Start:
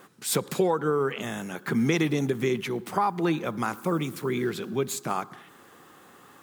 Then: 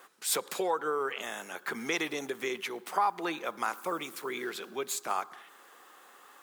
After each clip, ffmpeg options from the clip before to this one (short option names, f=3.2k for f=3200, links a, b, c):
-af "highpass=560,volume=-1.5dB"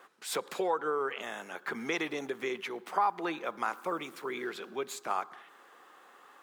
-af "highshelf=f=5.1k:g=-12"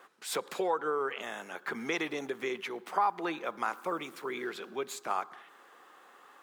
-af anull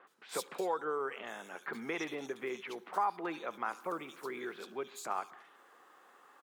-filter_complex "[0:a]acrossover=split=3200[a][b];[b]adelay=70[c];[a][c]amix=inputs=2:normalize=0,volume=-4dB"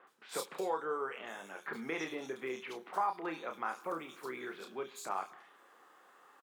-filter_complex "[0:a]asplit=2[a][b];[b]adelay=31,volume=-6.5dB[c];[a][c]amix=inputs=2:normalize=0,volume=-1.5dB"